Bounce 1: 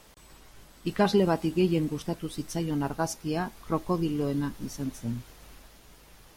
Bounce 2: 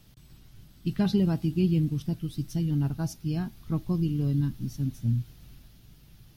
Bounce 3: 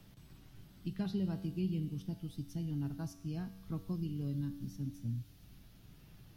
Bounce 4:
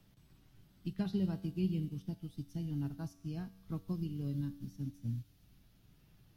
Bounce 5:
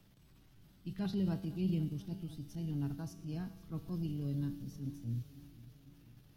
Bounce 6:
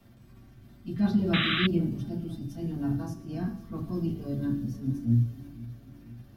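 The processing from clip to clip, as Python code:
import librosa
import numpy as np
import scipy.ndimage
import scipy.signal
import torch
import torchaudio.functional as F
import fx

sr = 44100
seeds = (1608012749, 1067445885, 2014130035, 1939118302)

y1 = fx.graphic_eq(x, sr, hz=(125, 500, 1000, 2000, 8000), db=(11, -11, -11, -7, -10))
y2 = fx.comb_fb(y1, sr, f0_hz=95.0, decay_s=1.0, harmonics='all', damping=0.0, mix_pct=70)
y2 = fx.band_squash(y2, sr, depth_pct=40)
y2 = y2 * 10.0 ** (-2.0 / 20.0)
y3 = fx.upward_expand(y2, sr, threshold_db=-50.0, expansion=1.5)
y3 = y3 * 10.0 ** (2.5 / 20.0)
y4 = fx.transient(y3, sr, attack_db=-6, sustain_db=4)
y4 = fx.echo_feedback(y4, sr, ms=498, feedback_pct=58, wet_db=-18)
y4 = y4 * 10.0 ** (1.0 / 20.0)
y5 = fx.rev_fdn(y4, sr, rt60_s=0.33, lf_ratio=1.2, hf_ratio=0.35, size_ms=26.0, drr_db=-8.0)
y5 = fx.spec_paint(y5, sr, seeds[0], shape='noise', start_s=1.33, length_s=0.34, low_hz=1100.0, high_hz=4000.0, level_db=-28.0)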